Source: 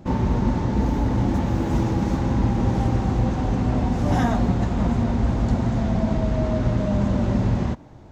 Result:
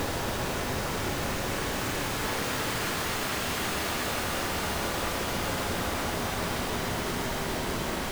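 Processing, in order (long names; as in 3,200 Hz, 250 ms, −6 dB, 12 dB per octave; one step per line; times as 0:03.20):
wrap-around overflow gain 18.5 dB
extreme stretch with random phases 10×, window 0.50 s, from 0:03.88
level −7 dB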